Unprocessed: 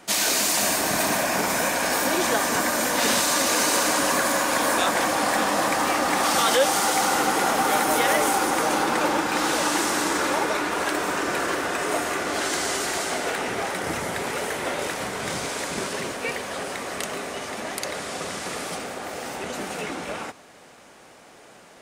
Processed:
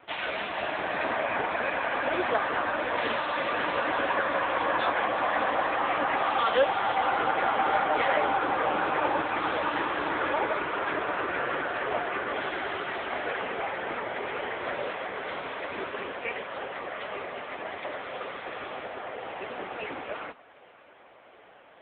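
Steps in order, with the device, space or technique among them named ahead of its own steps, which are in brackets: high-pass 90 Hz 24 dB/octave; telephone (band-pass 340–3500 Hz; AMR-NB 6.7 kbps 8 kHz)

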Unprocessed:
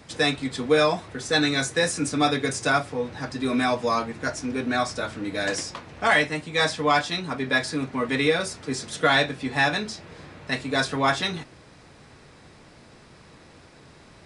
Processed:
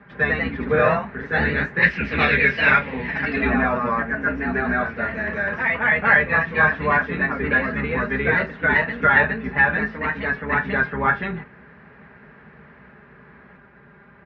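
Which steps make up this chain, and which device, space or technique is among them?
sub-octave bass pedal (octave divider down 2 oct, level +2 dB; cabinet simulation 74–2100 Hz, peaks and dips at 320 Hz -5 dB, 660 Hz -5 dB, 1.6 kHz +9 dB); comb 5 ms, depth 79%; 1.82–3.50 s: high-order bell 3.1 kHz +14.5 dB; ever faster or slower copies 105 ms, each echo +1 st, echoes 2; trim -1 dB

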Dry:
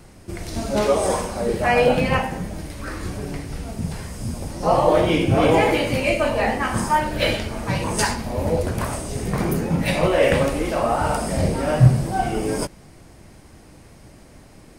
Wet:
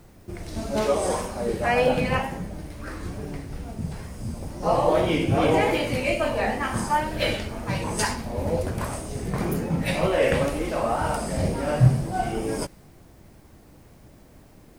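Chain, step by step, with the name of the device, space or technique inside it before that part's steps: plain cassette with noise reduction switched in (tape noise reduction on one side only decoder only; wow and flutter 47 cents; white noise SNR 39 dB); trim -4 dB

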